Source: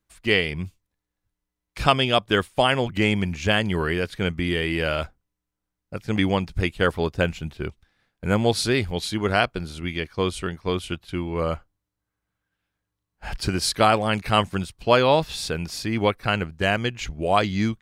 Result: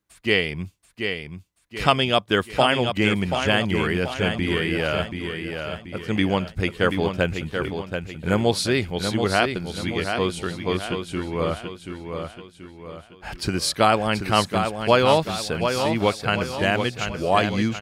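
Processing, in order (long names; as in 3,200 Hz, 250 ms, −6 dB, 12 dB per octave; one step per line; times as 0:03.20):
high-pass filter 160 Hz 6 dB per octave
low-shelf EQ 210 Hz +4.5 dB
on a send: repeating echo 732 ms, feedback 44%, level −6.5 dB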